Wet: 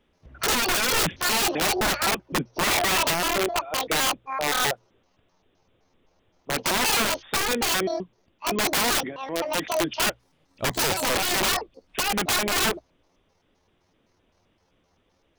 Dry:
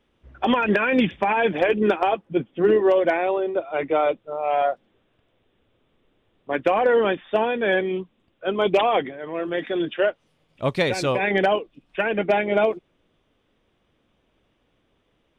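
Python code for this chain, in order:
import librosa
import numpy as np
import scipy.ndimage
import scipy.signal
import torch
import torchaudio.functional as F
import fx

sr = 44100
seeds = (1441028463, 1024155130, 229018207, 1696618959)

y = fx.pitch_trill(x, sr, semitones=10.0, every_ms=129)
y = fx.low_shelf(y, sr, hz=180.0, db=2.0)
y = (np.mod(10.0 ** (17.5 / 20.0) * y + 1.0, 2.0) - 1.0) / 10.0 ** (17.5 / 20.0)
y = fx.hum_notches(y, sr, base_hz=60, count=2)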